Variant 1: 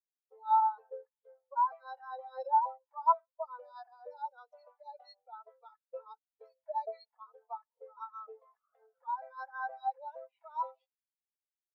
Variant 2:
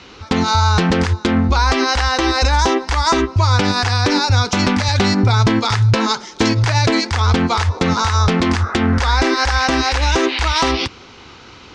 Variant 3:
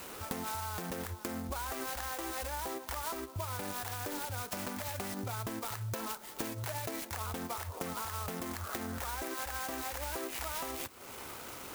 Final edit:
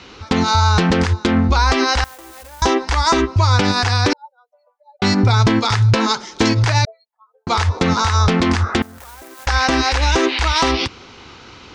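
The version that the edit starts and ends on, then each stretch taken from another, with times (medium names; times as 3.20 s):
2
2.04–2.62 s: from 3
4.13–5.02 s: from 1
6.85–7.47 s: from 1
8.82–9.47 s: from 3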